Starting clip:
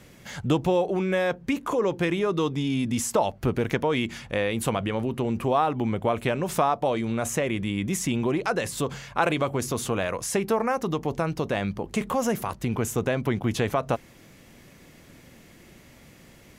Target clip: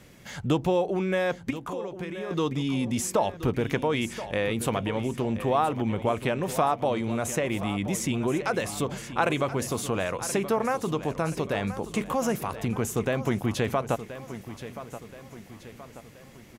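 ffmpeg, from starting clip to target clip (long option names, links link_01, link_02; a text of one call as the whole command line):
ffmpeg -i in.wav -filter_complex "[0:a]asettb=1/sr,asplit=3[link_01][link_02][link_03];[link_01]atrim=end=1.504[link_04];[link_02]atrim=start=1.5:end=2.31,asetpts=PTS-STARTPTS,afade=type=in:duration=0.004:curve=qsin,afade=type=out:start_time=0.806:duration=0.004:curve=qsin,acompressor=threshold=-31dB:ratio=12[link_05];[link_03]atrim=start=2.306[link_06];[link_04][link_05]acrossfade=duration=0.004:curve1=hsin:curve2=qsin[link_07];[link_07][link_06]acrossfade=duration=0.004:curve1=qsin:curve2=hsin,aecho=1:1:1027|2054|3081|4108|5135:0.224|0.105|0.0495|0.0232|0.0109,volume=-1.5dB" out.wav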